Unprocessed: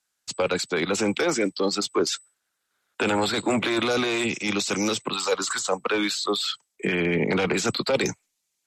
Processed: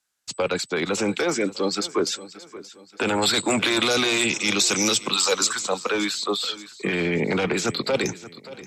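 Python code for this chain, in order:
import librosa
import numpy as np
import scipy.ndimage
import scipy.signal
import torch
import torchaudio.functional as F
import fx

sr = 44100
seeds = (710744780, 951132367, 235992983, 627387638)

y = fx.high_shelf(x, sr, hz=2700.0, db=10.5, at=(3.22, 5.47))
y = fx.echo_feedback(y, sr, ms=578, feedback_pct=40, wet_db=-17.0)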